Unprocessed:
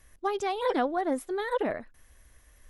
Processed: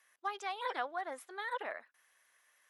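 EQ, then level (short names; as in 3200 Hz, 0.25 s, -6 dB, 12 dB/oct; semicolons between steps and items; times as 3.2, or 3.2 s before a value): HPF 1100 Hz 12 dB/oct; high shelf 3600 Hz -9 dB; -1.0 dB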